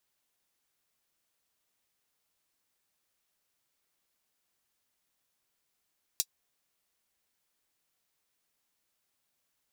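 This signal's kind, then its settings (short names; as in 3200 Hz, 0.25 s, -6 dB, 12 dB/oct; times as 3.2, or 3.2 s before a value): closed hi-hat, high-pass 4700 Hz, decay 0.06 s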